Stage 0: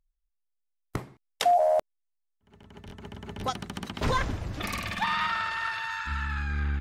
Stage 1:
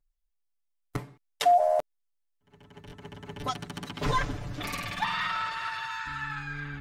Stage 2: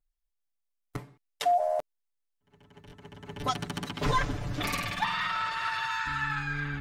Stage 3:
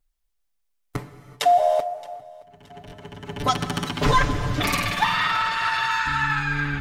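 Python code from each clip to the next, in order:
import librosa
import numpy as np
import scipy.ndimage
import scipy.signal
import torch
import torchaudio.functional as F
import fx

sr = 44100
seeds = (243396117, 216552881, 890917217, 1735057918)

y1 = x + 0.99 * np.pad(x, (int(6.9 * sr / 1000.0), 0))[:len(x)]
y1 = F.gain(torch.from_numpy(y1), -4.0).numpy()
y2 = fx.rider(y1, sr, range_db=4, speed_s=0.5)
y3 = fx.echo_feedback(y2, sr, ms=621, feedback_pct=48, wet_db=-23.5)
y3 = fx.rev_gated(y3, sr, seeds[0], gate_ms=410, shape='flat', drr_db=11.0)
y3 = F.gain(torch.from_numpy(y3), 8.0).numpy()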